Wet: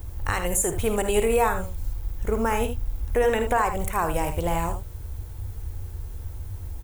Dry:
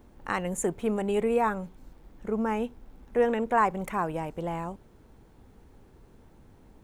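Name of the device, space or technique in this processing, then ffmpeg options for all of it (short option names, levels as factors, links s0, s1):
car stereo with a boomy subwoofer: -af "aemphasis=mode=production:type=75fm,lowshelf=f=130:t=q:w=3:g=13,alimiter=limit=0.106:level=0:latency=1:release=140,aecho=1:1:53|78:0.266|0.316,volume=2.24"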